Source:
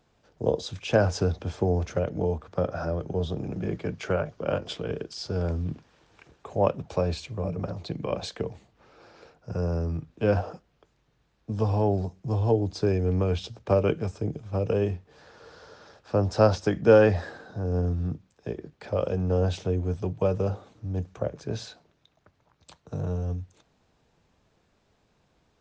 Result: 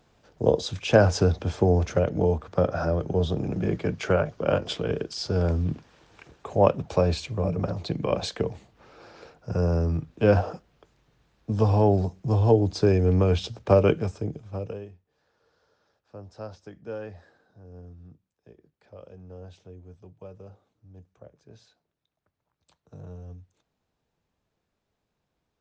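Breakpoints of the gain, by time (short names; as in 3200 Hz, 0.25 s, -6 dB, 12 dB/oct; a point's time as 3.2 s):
13.88 s +4 dB
14.64 s -6 dB
14.92 s -19 dB
21.56 s -19 dB
23.01 s -12 dB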